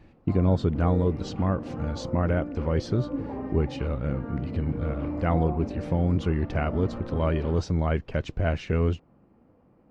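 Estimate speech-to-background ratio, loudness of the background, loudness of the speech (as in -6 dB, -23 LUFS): 8.5 dB, -36.0 LUFS, -27.5 LUFS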